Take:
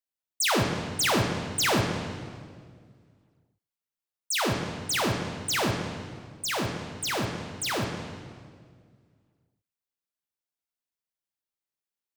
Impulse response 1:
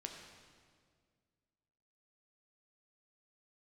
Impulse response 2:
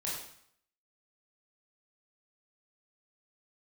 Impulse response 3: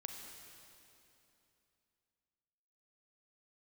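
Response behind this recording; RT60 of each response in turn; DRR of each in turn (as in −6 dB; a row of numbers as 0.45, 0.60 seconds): 1; 1.9, 0.65, 2.9 seconds; 1.5, −6.0, 2.5 decibels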